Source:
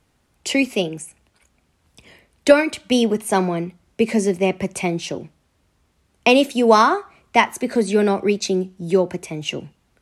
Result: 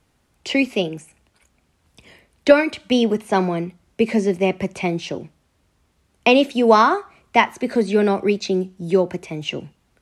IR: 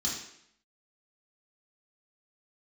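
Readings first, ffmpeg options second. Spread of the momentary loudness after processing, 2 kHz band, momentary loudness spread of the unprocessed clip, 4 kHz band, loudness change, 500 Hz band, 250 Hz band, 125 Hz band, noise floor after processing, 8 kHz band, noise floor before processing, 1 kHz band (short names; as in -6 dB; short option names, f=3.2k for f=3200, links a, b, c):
12 LU, 0.0 dB, 12 LU, -1.0 dB, 0.0 dB, 0.0 dB, 0.0 dB, 0.0 dB, -65 dBFS, -8.5 dB, -65 dBFS, 0.0 dB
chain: -filter_complex "[0:a]acrossover=split=5300[a][b];[b]acompressor=threshold=-49dB:ratio=4:attack=1:release=60[c];[a][c]amix=inputs=2:normalize=0"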